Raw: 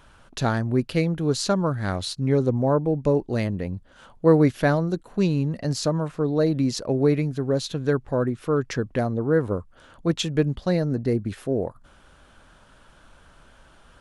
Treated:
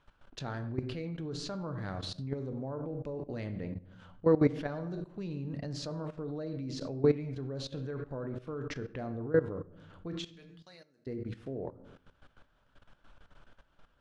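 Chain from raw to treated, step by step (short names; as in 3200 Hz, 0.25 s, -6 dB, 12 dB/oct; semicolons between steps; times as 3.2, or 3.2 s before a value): 10.22–11.07 differentiator; shoebox room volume 150 m³, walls mixed, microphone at 0.37 m; level quantiser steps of 16 dB; LPF 4800 Hz 12 dB/oct; gain -5.5 dB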